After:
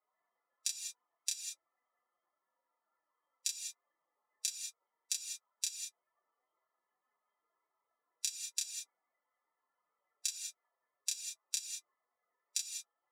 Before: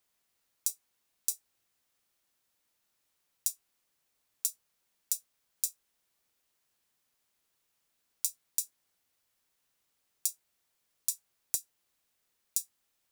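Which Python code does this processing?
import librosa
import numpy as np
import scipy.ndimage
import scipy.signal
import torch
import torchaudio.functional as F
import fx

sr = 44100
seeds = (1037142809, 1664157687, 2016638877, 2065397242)

y = fx.bin_expand(x, sr, power=3.0)
y = fx.bandpass_edges(y, sr, low_hz=690.0, high_hz=3200.0)
y = fx.doubler(y, sr, ms=29.0, db=-4)
y = fx.rev_gated(y, sr, seeds[0], gate_ms=220, shape='rising', drr_db=4.0)
y = y * librosa.db_to_amplitude(14.5)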